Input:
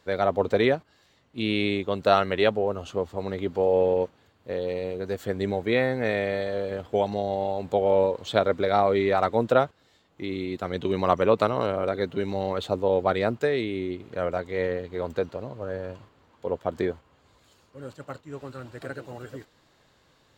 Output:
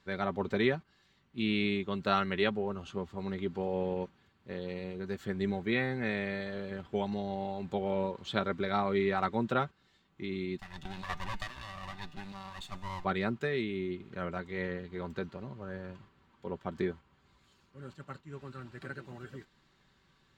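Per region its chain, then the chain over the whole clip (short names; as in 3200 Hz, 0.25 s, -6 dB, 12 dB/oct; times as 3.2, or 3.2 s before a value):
10.59–13.05 minimum comb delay 1.1 ms + high shelf 3300 Hz +11 dB + resonator 150 Hz, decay 1.5 s
whole clip: LPF 2900 Hz 6 dB/oct; bell 580 Hz -12.5 dB 1.1 oct; comb 5.2 ms, depth 44%; gain -2.5 dB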